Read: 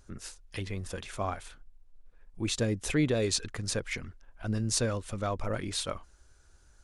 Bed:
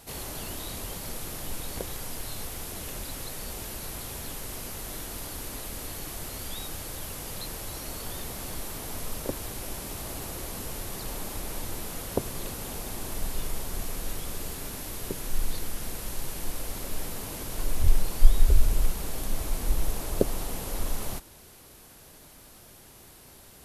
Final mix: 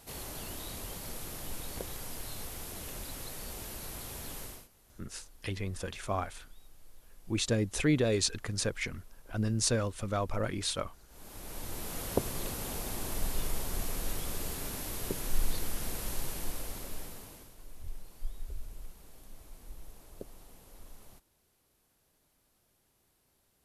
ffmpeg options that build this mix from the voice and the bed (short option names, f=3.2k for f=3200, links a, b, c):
-filter_complex "[0:a]adelay=4900,volume=0dB[a];[1:a]volume=20dB,afade=t=out:st=4.42:d=0.26:silence=0.0841395,afade=t=in:st=11.08:d=0.98:silence=0.0562341,afade=t=out:st=16.14:d=1.41:silence=0.1[b];[a][b]amix=inputs=2:normalize=0"